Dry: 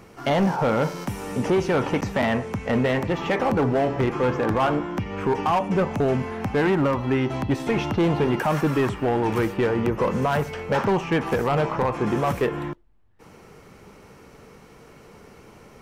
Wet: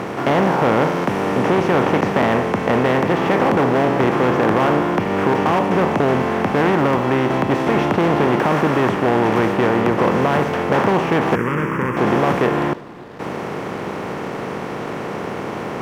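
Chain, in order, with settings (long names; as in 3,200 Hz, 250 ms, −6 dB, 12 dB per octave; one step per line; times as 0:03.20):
compressor on every frequency bin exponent 0.4
high-pass filter 100 Hz 12 dB per octave
high-shelf EQ 6,800 Hz −10.5 dB
dead-zone distortion −40 dBFS
0:11.35–0:11.97: phaser with its sweep stopped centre 1,700 Hz, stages 4
feedback echo with a low-pass in the loop 294 ms, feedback 78%, level −23.5 dB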